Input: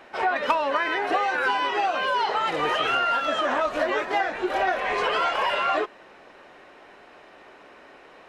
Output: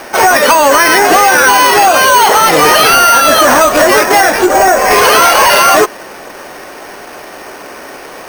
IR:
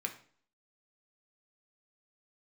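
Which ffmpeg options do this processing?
-filter_complex "[0:a]asettb=1/sr,asplit=3[s0][s1][s2];[s0]atrim=end=4.464[s3];[s1]atrim=start=4.46:end=4.91,asetpts=PTS-STARTPTS,afade=t=in:d=0.004:c=qsin,afade=t=out:st=0.446:d=0.004:c=qsin,lowpass=f=1200:p=1[s4];[s2]atrim=start=4.906[s5];[s3][s4]acrossfade=d=0.004:c1=hsin:c2=qsin[s6];[s6][s5]acrossfade=d=0.004:c1=qsin:c2=hsin,apsyclip=12.6,acrusher=samples=6:mix=1:aa=0.000001,volume=0.841"

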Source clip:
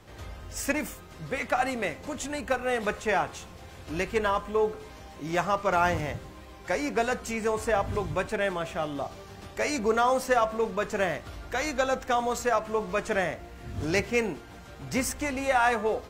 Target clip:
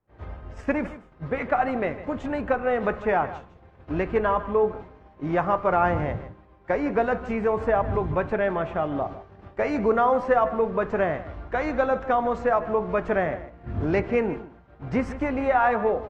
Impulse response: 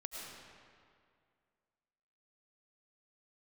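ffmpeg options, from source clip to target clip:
-filter_complex "[0:a]lowpass=1500,agate=range=0.0224:threshold=0.0158:ratio=3:detection=peak,asplit=2[s0][s1];[s1]acompressor=threshold=0.0224:ratio=6,volume=1[s2];[s0][s2]amix=inputs=2:normalize=0,aecho=1:1:154:0.178,volume=1.19"

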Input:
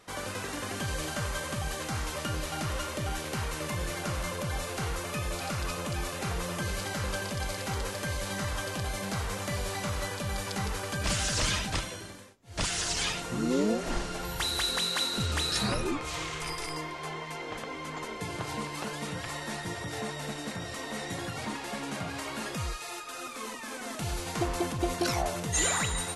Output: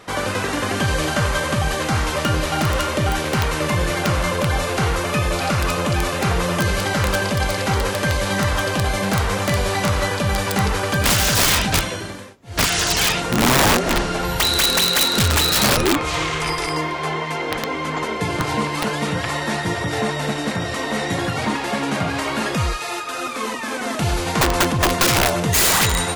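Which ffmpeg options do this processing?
-filter_complex "[0:a]highpass=f=42:p=1,asplit=2[s0][s1];[s1]adynamicsmooth=sensitivity=2.5:basefreq=5400,volume=0.841[s2];[s0][s2]amix=inputs=2:normalize=0,aeval=exprs='(mod(8.41*val(0)+1,2)-1)/8.41':c=same,volume=2.82"

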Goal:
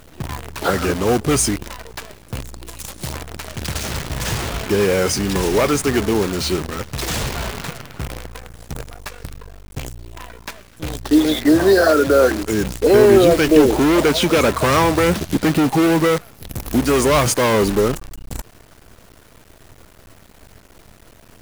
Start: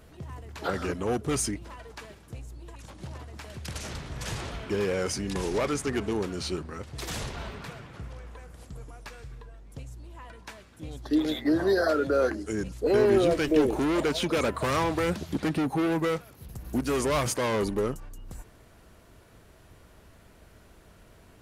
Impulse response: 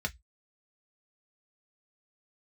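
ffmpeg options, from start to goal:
-filter_complex "[0:a]asettb=1/sr,asplit=3[s0][s1][s2];[s0]atrim=end=2.664[s3];[s1]atrim=start=2.66:end=3.13,asetpts=PTS-STARTPTS,afade=t=in:d=0.004:c=qsin,afade=t=out:st=0.466:d=0.004:c=qsin,aemphasis=mode=production:type=75fm[s4];[s2]atrim=start=3.126[s5];[s3][s4]acrossfade=d=0.004:c1=hsin:c2=qsin[s6];[s6][s5]acrossfade=d=0.004:c1=qsin:c2=hsin,acontrast=57,acrusher=bits=6:dc=4:mix=0:aa=0.000001,volume=1.78"

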